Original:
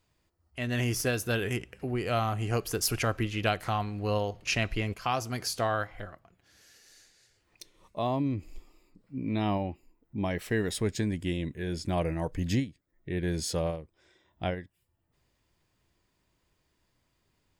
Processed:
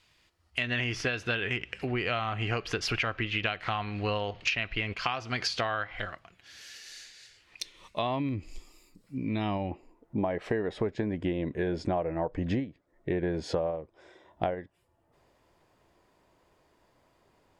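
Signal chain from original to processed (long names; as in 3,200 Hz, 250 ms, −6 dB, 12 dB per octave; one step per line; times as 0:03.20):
treble cut that deepens with the level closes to 2,800 Hz, closed at −28 dBFS
parametric band 3,000 Hz +14 dB 2.6 octaves, from 0:08.29 13,000 Hz, from 0:09.71 660 Hz
downward compressor 12 to 1, threshold −27 dBFS, peak gain reduction 15 dB
level +1 dB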